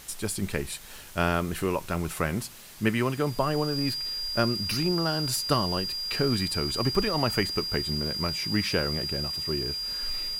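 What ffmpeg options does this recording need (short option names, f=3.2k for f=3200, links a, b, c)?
-af "bandreject=f=4.8k:w=30,afwtdn=0.0045"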